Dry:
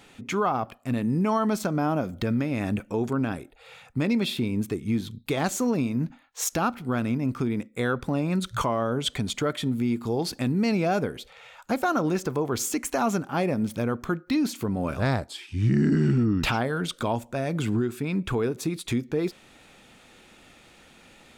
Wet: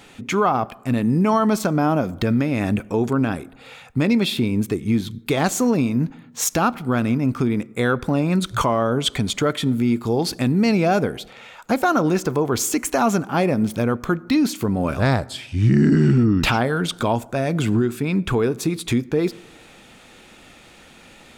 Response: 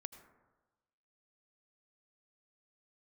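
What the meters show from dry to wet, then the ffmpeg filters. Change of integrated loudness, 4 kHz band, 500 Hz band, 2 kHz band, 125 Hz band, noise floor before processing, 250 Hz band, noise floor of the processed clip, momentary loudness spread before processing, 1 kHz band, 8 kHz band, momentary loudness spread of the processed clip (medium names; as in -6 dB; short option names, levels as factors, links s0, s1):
+6.0 dB, +6.0 dB, +6.0 dB, +6.0 dB, +6.0 dB, -55 dBFS, +6.0 dB, -47 dBFS, 6 LU, +6.0 dB, +6.0 dB, 6 LU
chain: -filter_complex "[0:a]asplit=2[s0][s1];[1:a]atrim=start_sample=2205[s2];[s1][s2]afir=irnorm=-1:irlink=0,volume=0.376[s3];[s0][s3]amix=inputs=2:normalize=0,volume=1.68"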